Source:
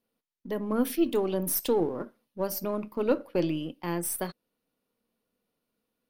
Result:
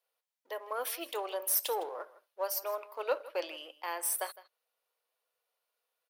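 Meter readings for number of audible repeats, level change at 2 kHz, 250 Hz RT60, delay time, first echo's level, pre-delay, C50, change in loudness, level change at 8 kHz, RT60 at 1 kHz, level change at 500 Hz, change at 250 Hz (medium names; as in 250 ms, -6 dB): 1, 0.0 dB, no reverb, 159 ms, -18.5 dB, no reverb, no reverb, -5.5 dB, 0.0 dB, no reverb, -7.5 dB, -24.5 dB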